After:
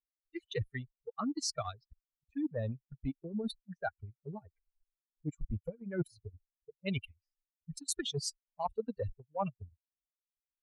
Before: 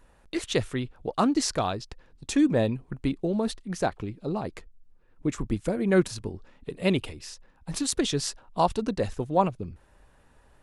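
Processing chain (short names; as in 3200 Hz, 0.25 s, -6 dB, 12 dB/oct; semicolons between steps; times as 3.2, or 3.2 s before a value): per-bin expansion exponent 3; reverse; compressor 12:1, threshold -38 dBFS, peak gain reduction 20.5 dB; reverse; low-pass opened by the level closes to 320 Hz, open at -41.5 dBFS; transient shaper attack +2 dB, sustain -8 dB; gain +5 dB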